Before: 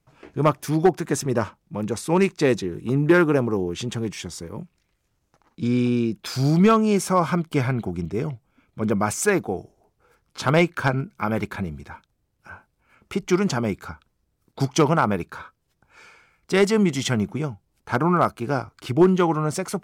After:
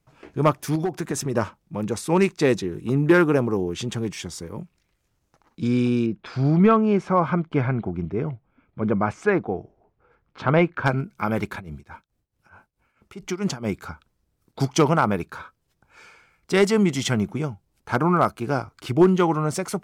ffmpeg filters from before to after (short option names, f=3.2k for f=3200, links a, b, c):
-filter_complex "[0:a]asettb=1/sr,asplit=3[a][b][c];[a]atrim=end=0.754[d];[b]atrim=start=0.75:end=1.36,asetpts=PTS-STARTPTS,afade=t=in:d=0.004:c=qsin,afade=t=out:st=0.606:d=0.004:c=qsin,acompressor=threshold=-20dB:ratio=12:attack=3.2:release=140:knee=1:detection=peak[e];[c]atrim=start=1.356[f];[d][e]acrossfade=d=0.004:c1=hsin:c2=qsin[g];[g][f]acrossfade=d=0.004:c1=qsin:c2=hsin,asettb=1/sr,asplit=3[h][i][j];[h]atrim=end=6.064[k];[i]atrim=start=6.06:end=10.86,asetpts=PTS-STARTPTS,afade=t=in:d=0.004:c=qsin,afade=t=out:st=4.796:d=0.004:c=qsin,lowpass=2.2k[l];[j]atrim=start=10.856[m];[k][l]acrossfade=d=0.004:c1=hsin:c2=qsin[n];[n][m]acrossfade=d=0.004:c1=qsin:c2=hsin,asplit=3[o][p][q];[o]afade=t=out:st=11.58:d=0.02[r];[p]tremolo=f=4.6:d=0.86,afade=t=in:st=11.58:d=0.02,afade=t=out:st=13.71:d=0.02[s];[q]afade=t=in:st=13.71:d=0.02[t];[r][s][t]amix=inputs=3:normalize=0"